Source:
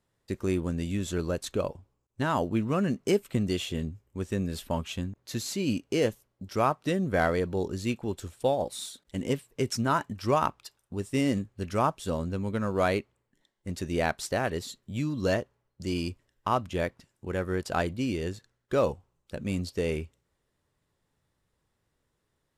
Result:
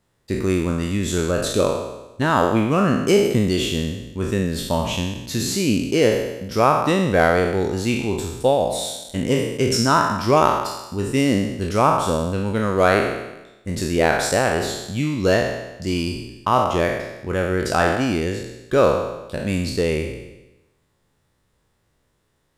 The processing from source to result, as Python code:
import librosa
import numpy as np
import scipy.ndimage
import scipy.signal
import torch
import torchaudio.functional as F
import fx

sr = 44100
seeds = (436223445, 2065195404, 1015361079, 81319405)

y = fx.spec_trails(x, sr, decay_s=1.01)
y = F.gain(torch.from_numpy(y), 7.0).numpy()